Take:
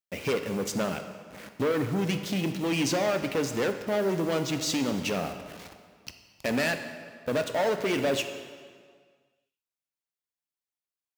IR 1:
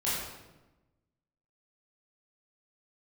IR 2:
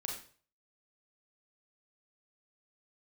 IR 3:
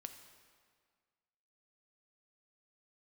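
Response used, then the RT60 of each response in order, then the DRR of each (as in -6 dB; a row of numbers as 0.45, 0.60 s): 3; 1.1, 0.45, 1.8 s; -9.5, -1.0, 6.5 dB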